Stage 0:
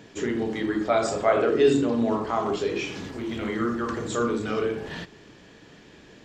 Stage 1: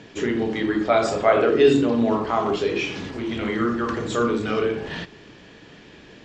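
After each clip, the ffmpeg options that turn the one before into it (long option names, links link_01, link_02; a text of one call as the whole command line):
ffmpeg -i in.wav -af "lowpass=6200,equalizer=frequency=2700:width=1.5:gain=2.5,volume=3.5dB" out.wav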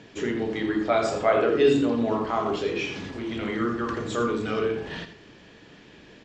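ffmpeg -i in.wav -af "aecho=1:1:83:0.282,volume=-4dB" out.wav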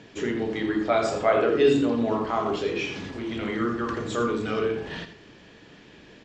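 ffmpeg -i in.wav -af anull out.wav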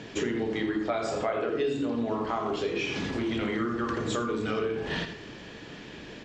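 ffmpeg -i in.wav -af "acompressor=threshold=-33dB:ratio=6,bandreject=frequency=94.46:width_type=h:width=4,bandreject=frequency=188.92:width_type=h:width=4,bandreject=frequency=283.38:width_type=h:width=4,bandreject=frequency=377.84:width_type=h:width=4,bandreject=frequency=472.3:width_type=h:width=4,bandreject=frequency=566.76:width_type=h:width=4,bandreject=frequency=661.22:width_type=h:width=4,bandreject=frequency=755.68:width_type=h:width=4,bandreject=frequency=850.14:width_type=h:width=4,bandreject=frequency=944.6:width_type=h:width=4,bandreject=frequency=1039.06:width_type=h:width=4,bandreject=frequency=1133.52:width_type=h:width=4,bandreject=frequency=1227.98:width_type=h:width=4,bandreject=frequency=1322.44:width_type=h:width=4,bandreject=frequency=1416.9:width_type=h:width=4,bandreject=frequency=1511.36:width_type=h:width=4,bandreject=frequency=1605.82:width_type=h:width=4,bandreject=frequency=1700.28:width_type=h:width=4,bandreject=frequency=1794.74:width_type=h:width=4,bandreject=frequency=1889.2:width_type=h:width=4,bandreject=frequency=1983.66:width_type=h:width=4,bandreject=frequency=2078.12:width_type=h:width=4,bandreject=frequency=2172.58:width_type=h:width=4,bandreject=frequency=2267.04:width_type=h:width=4,bandreject=frequency=2361.5:width_type=h:width=4,bandreject=frequency=2455.96:width_type=h:width=4,bandreject=frequency=2550.42:width_type=h:width=4,bandreject=frequency=2644.88:width_type=h:width=4,bandreject=frequency=2739.34:width_type=h:width=4,bandreject=frequency=2833.8:width_type=h:width=4,volume=6.5dB" out.wav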